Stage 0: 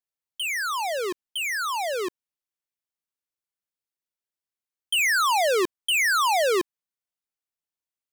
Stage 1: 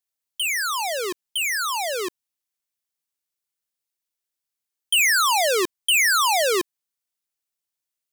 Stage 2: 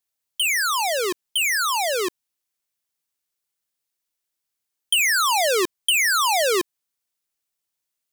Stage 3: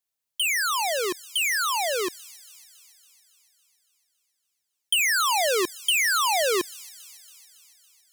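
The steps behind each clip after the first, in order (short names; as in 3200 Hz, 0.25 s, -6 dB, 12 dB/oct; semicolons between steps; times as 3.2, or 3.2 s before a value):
high shelf 2900 Hz +8 dB
compressor, threshold -20 dBFS, peak gain reduction 5 dB; gain +3.5 dB
thin delay 0.279 s, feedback 62%, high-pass 5300 Hz, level -12.5 dB; gain -3 dB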